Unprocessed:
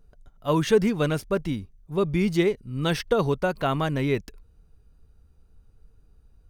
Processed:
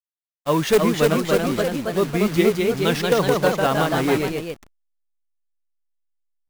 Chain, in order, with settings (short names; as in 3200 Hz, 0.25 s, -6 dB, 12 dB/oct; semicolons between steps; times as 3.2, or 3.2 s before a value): level-crossing sampler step -32.5 dBFS; expander -36 dBFS; low shelf 120 Hz -10 dB; in parallel at -4.5 dB: wrapped overs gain 11.5 dB; on the sum: echoes that change speed 0.343 s, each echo +1 st, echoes 3